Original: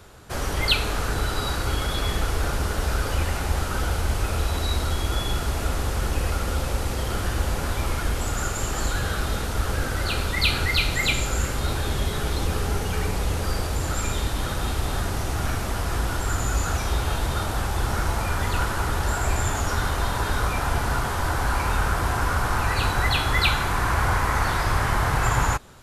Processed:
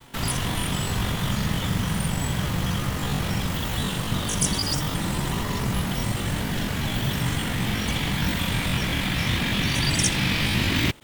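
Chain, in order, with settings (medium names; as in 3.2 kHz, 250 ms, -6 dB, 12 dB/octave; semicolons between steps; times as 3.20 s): granulator, pitch spread up and down by 0 st; speed mistake 33 rpm record played at 78 rpm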